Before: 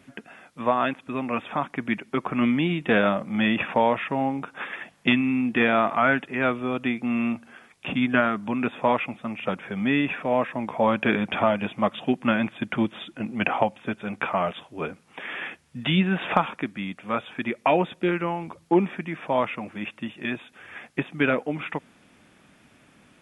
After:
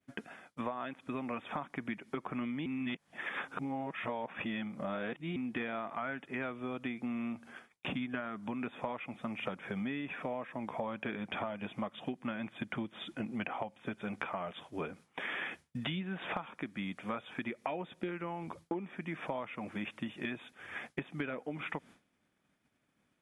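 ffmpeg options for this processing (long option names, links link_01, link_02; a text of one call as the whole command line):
ffmpeg -i in.wav -filter_complex "[0:a]asplit=3[link_01][link_02][link_03];[link_01]atrim=end=2.662[link_04];[link_02]atrim=start=2.658:end=5.362,asetpts=PTS-STARTPTS,areverse[link_05];[link_03]atrim=start=5.358[link_06];[link_04][link_05]acrossfade=duration=0.004:curve1=hsin:curve2=hsin[link_07];[link_07][link_06]acrossfade=duration=0.004:curve1=hsin:curve2=hsin,agate=range=-33dB:threshold=-43dB:ratio=3:detection=peak,bandreject=frequency=2700:width=16,acompressor=threshold=-33dB:ratio=12,volume=-1.5dB" out.wav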